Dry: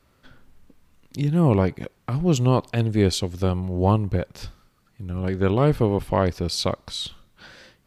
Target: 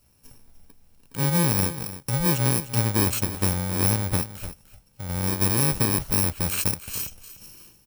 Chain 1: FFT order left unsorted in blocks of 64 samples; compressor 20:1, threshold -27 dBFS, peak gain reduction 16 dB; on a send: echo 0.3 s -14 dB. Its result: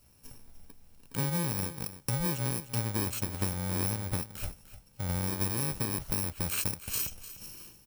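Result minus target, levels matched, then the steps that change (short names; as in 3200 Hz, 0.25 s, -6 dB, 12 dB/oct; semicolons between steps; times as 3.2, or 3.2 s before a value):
compressor: peak gain reduction +10.5 dB
change: compressor 20:1, threshold -16 dBFS, peak gain reduction 5.5 dB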